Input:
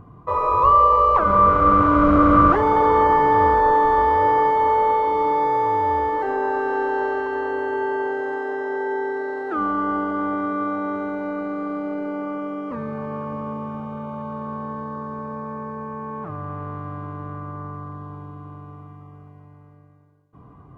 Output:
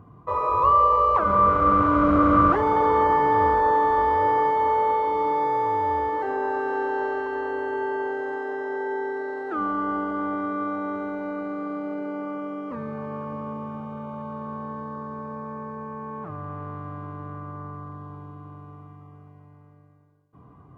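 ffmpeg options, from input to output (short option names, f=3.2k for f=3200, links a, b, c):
-af "highpass=54,volume=-3.5dB"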